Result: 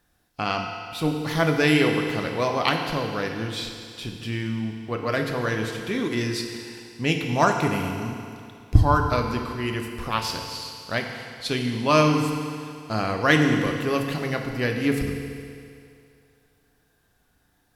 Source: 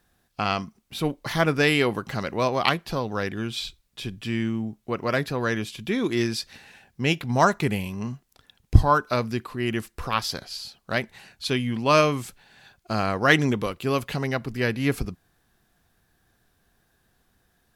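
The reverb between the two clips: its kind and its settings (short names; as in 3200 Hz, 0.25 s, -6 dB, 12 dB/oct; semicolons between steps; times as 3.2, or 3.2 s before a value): FDN reverb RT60 2.4 s, low-frequency decay 0.85×, high-frequency decay 1×, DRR 2.5 dB; gain -1.5 dB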